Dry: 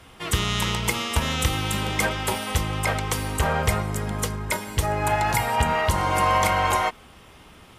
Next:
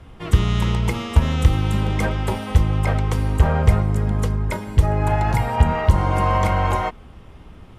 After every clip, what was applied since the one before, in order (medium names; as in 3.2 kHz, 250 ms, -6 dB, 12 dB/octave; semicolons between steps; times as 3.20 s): tilt EQ -3 dB/octave; trim -1 dB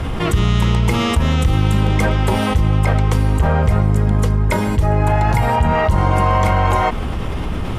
level flattener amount 70%; trim -3 dB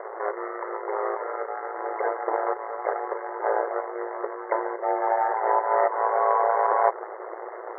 median filter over 25 samples; brick-wall FIR band-pass 400–2100 Hz; ring modulator 56 Hz; trim +1.5 dB